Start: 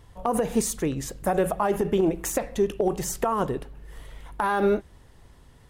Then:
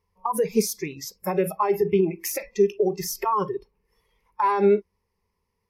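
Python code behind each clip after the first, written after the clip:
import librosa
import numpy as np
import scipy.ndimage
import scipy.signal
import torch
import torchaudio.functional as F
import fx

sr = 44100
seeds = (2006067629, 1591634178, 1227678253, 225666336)

y = fx.ripple_eq(x, sr, per_octave=0.84, db=14)
y = fx.noise_reduce_blind(y, sr, reduce_db=22)
y = fx.low_shelf(y, sr, hz=150.0, db=-7.0)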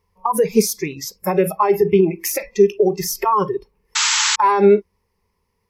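y = fx.spec_paint(x, sr, seeds[0], shape='noise', start_s=3.95, length_s=0.41, low_hz=840.0, high_hz=7900.0, level_db=-24.0)
y = y * librosa.db_to_amplitude(6.5)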